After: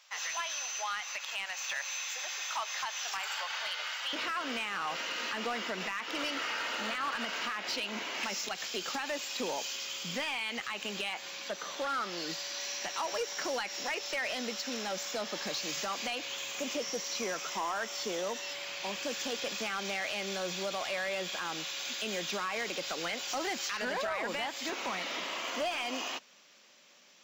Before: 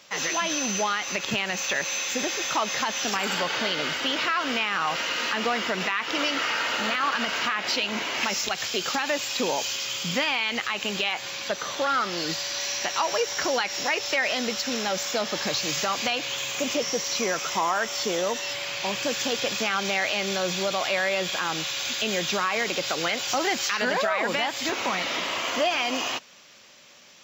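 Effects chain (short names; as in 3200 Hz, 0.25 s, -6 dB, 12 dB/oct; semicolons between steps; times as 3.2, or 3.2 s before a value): HPF 750 Hz 24 dB/oct, from 4.13 s 170 Hz; overloaded stage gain 19.5 dB; gain -8.5 dB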